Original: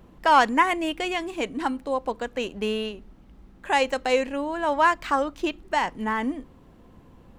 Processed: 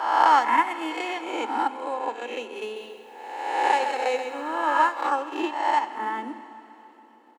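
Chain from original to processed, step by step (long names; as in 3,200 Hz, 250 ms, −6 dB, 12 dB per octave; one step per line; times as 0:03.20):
peak hold with a rise ahead of every peak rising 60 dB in 1.34 s
comb filter 2.3 ms, depth 39%
transient designer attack +5 dB, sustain −10 dB
Chebyshev high-pass with heavy ripple 220 Hz, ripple 6 dB
four-comb reverb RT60 3.4 s, combs from 31 ms, DRR 12 dB
0:02.63–0:04.89: feedback echo at a low word length 132 ms, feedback 35%, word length 9 bits, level −7.5 dB
level −4 dB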